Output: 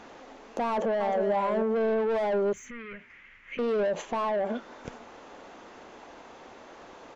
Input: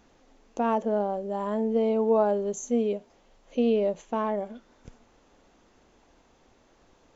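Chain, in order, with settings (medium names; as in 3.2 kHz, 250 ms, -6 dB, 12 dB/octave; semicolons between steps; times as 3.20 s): overdrive pedal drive 25 dB, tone 1.6 kHz, clips at -11 dBFS; peak limiter -22 dBFS, peak gain reduction 10.5 dB; 0.69–1.31 s: echo throw 310 ms, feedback 10%, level -6.5 dB; 2.53–3.59 s: FFT filter 100 Hz 0 dB, 710 Hz -27 dB, 2.1 kHz +10 dB, 4 kHz -15 dB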